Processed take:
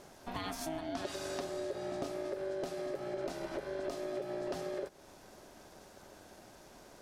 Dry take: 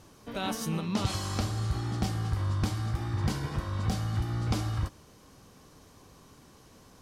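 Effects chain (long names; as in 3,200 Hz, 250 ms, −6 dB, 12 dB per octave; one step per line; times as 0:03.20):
downward compressor 4 to 1, threshold −37 dBFS, peak gain reduction 12 dB
ring modulation 480 Hz
level +2.5 dB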